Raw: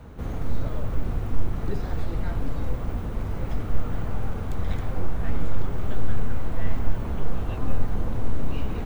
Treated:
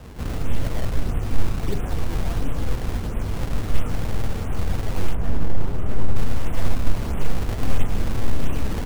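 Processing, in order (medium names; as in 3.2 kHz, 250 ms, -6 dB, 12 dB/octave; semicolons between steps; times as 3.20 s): CVSD coder 16 kbps; decimation with a swept rate 20×, swing 160% 1.5 Hz; 5.15–6.16 s: treble shelf 2 kHz -10 dB; trim +3.5 dB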